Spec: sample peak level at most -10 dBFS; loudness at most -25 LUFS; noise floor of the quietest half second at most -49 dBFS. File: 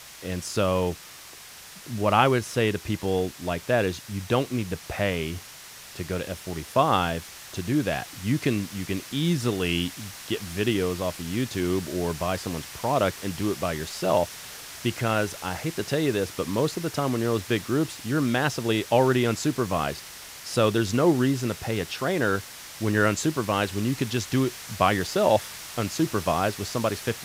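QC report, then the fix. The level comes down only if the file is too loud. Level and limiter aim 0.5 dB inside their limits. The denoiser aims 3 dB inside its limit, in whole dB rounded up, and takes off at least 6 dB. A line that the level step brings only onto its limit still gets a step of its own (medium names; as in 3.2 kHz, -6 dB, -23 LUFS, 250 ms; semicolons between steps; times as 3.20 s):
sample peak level -4.0 dBFS: fail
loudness -26.0 LUFS: pass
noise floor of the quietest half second -45 dBFS: fail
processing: noise reduction 7 dB, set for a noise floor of -45 dBFS; peak limiter -10.5 dBFS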